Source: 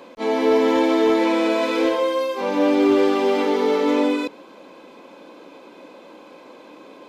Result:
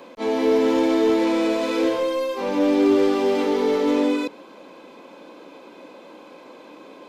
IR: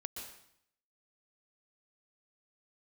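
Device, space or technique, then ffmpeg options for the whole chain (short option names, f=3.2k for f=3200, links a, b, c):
one-band saturation: -filter_complex "[0:a]acrossover=split=540|4200[a][b][c];[b]asoftclip=type=tanh:threshold=-27dB[d];[a][d][c]amix=inputs=3:normalize=0"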